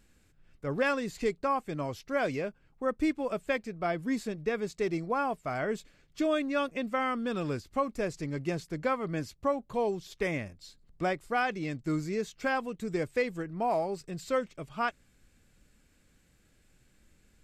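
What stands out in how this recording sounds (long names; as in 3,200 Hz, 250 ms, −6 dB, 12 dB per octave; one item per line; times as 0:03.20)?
background noise floor −66 dBFS
spectral slope −4.5 dB per octave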